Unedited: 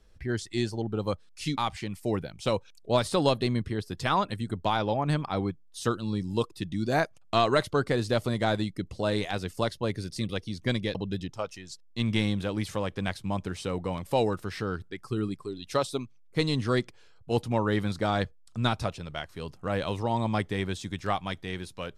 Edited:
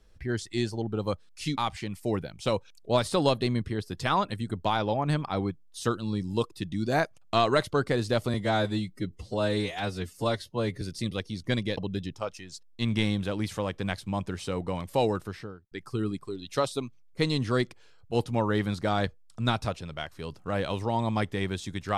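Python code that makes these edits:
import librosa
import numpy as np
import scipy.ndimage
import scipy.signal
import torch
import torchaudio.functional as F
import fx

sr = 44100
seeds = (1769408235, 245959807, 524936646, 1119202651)

y = fx.studio_fade_out(x, sr, start_s=14.33, length_s=0.56)
y = fx.edit(y, sr, fx.stretch_span(start_s=8.34, length_s=1.65, factor=1.5), tone=tone)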